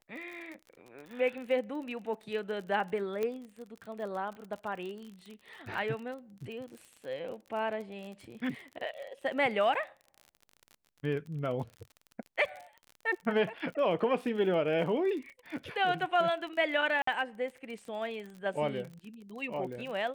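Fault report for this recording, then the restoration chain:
crackle 39/s -40 dBFS
3.23 pop -21 dBFS
17.02–17.07 gap 54 ms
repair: de-click; interpolate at 17.02, 54 ms

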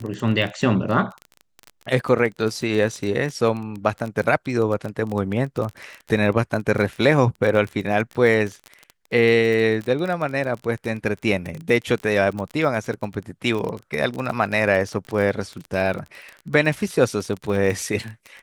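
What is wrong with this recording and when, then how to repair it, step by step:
crackle 26/s -26 dBFS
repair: de-click

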